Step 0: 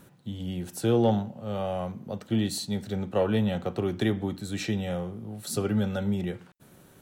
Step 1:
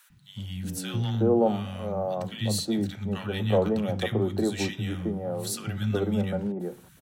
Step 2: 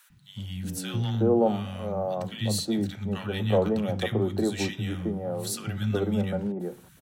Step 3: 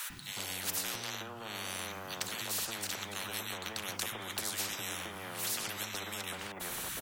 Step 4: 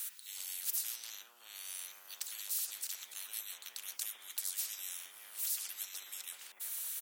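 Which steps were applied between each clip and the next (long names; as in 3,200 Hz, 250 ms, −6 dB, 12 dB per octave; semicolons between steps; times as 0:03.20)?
three-band delay without the direct sound highs, lows, mids 100/370 ms, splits 190/1,200 Hz; level +2.5 dB
no processing that can be heard
downward compressor, threshold −28 dBFS, peak gain reduction 10.5 dB; every bin compressed towards the loudest bin 10 to 1
high-pass filter 190 Hz 12 dB per octave; first difference; level −2 dB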